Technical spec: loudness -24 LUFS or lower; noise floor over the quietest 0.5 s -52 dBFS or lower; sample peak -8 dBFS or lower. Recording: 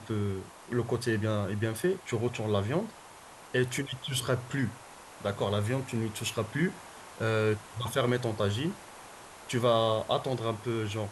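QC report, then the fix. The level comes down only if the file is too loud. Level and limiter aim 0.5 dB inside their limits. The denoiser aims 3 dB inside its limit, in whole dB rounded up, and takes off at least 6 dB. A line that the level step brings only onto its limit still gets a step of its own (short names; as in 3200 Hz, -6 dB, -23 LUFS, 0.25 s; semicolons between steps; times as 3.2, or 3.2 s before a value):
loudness -31.0 LUFS: OK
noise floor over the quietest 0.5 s -50 dBFS: fail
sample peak -13.0 dBFS: OK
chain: denoiser 6 dB, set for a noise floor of -50 dBFS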